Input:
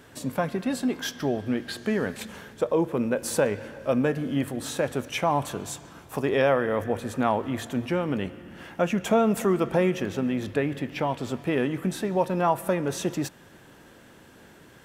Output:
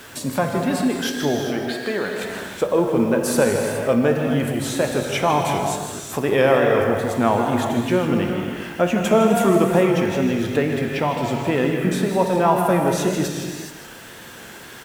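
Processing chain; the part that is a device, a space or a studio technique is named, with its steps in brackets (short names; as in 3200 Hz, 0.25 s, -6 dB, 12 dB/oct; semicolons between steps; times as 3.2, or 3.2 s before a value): 1.4–2.23 tone controls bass -14 dB, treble -6 dB; outdoor echo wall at 27 m, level -9 dB; non-linear reverb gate 0.45 s flat, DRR 2.5 dB; noise-reduction cassette on a plain deck (mismatched tape noise reduction encoder only; wow and flutter; white noise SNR 32 dB); gain +4.5 dB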